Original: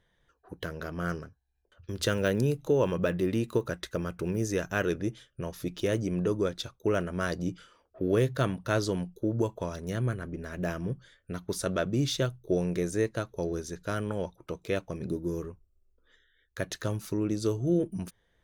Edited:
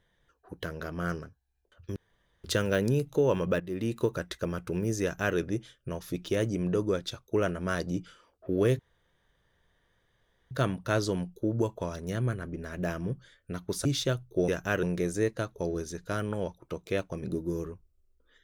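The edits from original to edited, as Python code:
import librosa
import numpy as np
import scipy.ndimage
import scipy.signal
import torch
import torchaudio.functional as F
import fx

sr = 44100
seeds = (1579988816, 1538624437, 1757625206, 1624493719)

y = fx.edit(x, sr, fx.insert_room_tone(at_s=1.96, length_s=0.48),
    fx.fade_in_from(start_s=3.12, length_s=0.36, floor_db=-14.5),
    fx.duplicate(start_s=4.54, length_s=0.35, to_s=12.61),
    fx.insert_room_tone(at_s=8.31, length_s=1.72),
    fx.cut(start_s=11.65, length_s=0.33), tone=tone)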